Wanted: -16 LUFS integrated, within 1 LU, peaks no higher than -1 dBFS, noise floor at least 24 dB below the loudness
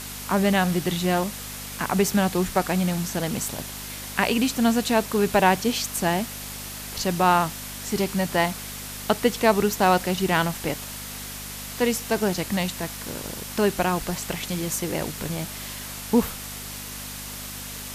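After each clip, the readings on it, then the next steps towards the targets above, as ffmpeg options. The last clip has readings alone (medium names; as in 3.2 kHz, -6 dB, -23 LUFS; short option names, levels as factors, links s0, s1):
hum 50 Hz; highest harmonic 250 Hz; hum level -40 dBFS; noise floor -36 dBFS; noise floor target -49 dBFS; loudness -25.0 LUFS; peak level -5.0 dBFS; loudness target -16.0 LUFS
-> -af "bandreject=f=50:t=h:w=4,bandreject=f=100:t=h:w=4,bandreject=f=150:t=h:w=4,bandreject=f=200:t=h:w=4,bandreject=f=250:t=h:w=4"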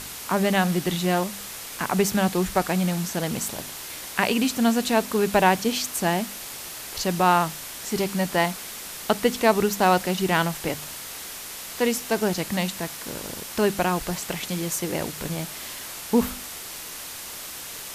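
hum not found; noise floor -37 dBFS; noise floor target -49 dBFS
-> -af "afftdn=nr=12:nf=-37"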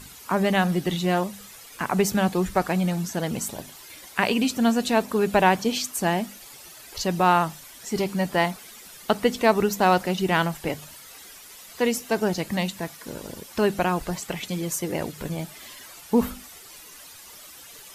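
noise floor -45 dBFS; noise floor target -49 dBFS
-> -af "afftdn=nr=6:nf=-45"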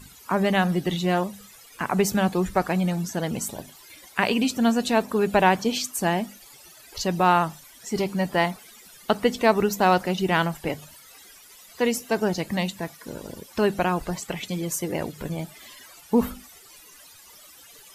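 noise floor -50 dBFS; loudness -24.5 LUFS; peak level -5.5 dBFS; loudness target -16.0 LUFS
-> -af "volume=2.66,alimiter=limit=0.891:level=0:latency=1"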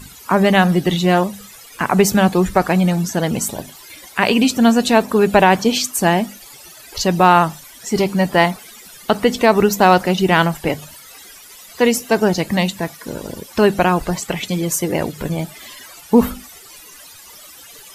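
loudness -16.5 LUFS; peak level -1.0 dBFS; noise floor -41 dBFS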